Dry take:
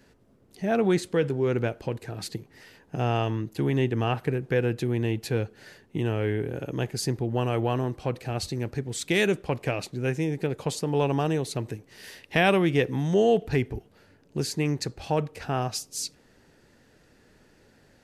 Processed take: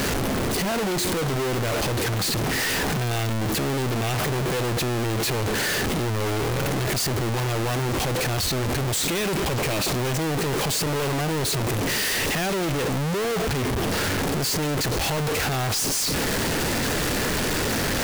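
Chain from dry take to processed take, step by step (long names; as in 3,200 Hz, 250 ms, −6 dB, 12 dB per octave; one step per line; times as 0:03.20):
sign of each sample alone
level +3.5 dB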